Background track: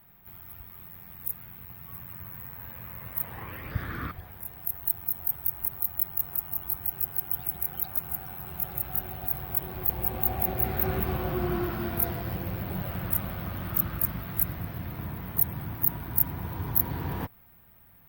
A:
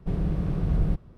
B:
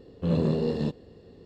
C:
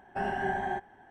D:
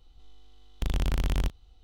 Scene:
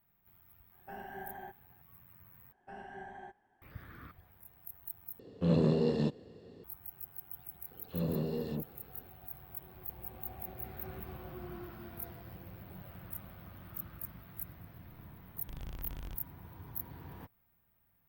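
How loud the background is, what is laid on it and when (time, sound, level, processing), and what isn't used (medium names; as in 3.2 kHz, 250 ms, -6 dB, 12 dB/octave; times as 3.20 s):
background track -16.5 dB
0.72 s: add C -14.5 dB
2.52 s: replace with C -16.5 dB
5.19 s: replace with B -2.5 dB + high-pass 95 Hz
7.64 s: add B -9.5 dB + phase dispersion lows, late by 74 ms, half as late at 1.8 kHz
14.67 s: add D -17.5 dB
not used: A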